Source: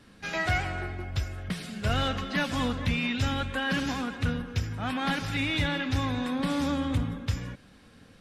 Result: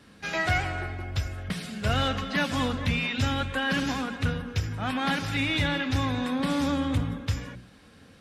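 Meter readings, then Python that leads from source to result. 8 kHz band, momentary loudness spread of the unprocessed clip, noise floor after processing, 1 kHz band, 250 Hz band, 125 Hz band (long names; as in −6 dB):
+2.0 dB, 7 LU, −53 dBFS, +2.0 dB, +1.0 dB, +1.5 dB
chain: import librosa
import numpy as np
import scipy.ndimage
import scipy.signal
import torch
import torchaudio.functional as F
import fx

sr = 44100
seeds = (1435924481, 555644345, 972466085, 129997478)

y = scipy.signal.sosfilt(scipy.signal.butter(2, 43.0, 'highpass', fs=sr, output='sos'), x)
y = fx.hum_notches(y, sr, base_hz=60, count=6)
y = y * librosa.db_to_amplitude(2.0)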